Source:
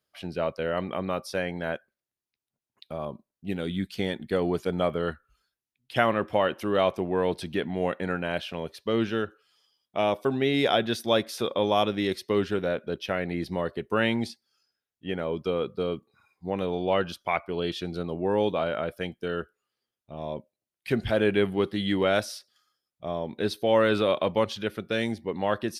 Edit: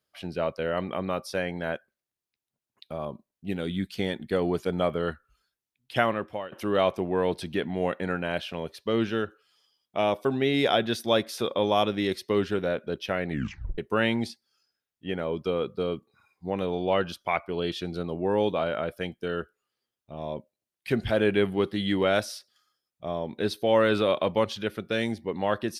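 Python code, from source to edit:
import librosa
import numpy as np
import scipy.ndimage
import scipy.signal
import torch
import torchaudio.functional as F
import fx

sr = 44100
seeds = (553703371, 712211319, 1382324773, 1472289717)

y = fx.edit(x, sr, fx.fade_out_to(start_s=5.96, length_s=0.56, floor_db=-20.5),
    fx.tape_stop(start_s=13.29, length_s=0.49), tone=tone)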